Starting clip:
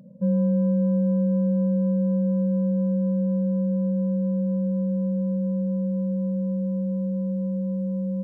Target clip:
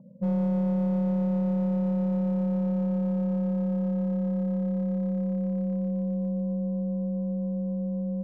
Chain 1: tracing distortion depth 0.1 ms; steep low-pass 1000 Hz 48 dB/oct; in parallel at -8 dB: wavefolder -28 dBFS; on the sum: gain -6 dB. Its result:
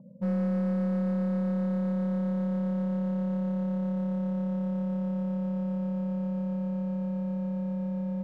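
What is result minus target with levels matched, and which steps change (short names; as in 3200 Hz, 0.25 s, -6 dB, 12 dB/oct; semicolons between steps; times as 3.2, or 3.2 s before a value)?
wavefolder: distortion +35 dB
change: wavefolder -20.5 dBFS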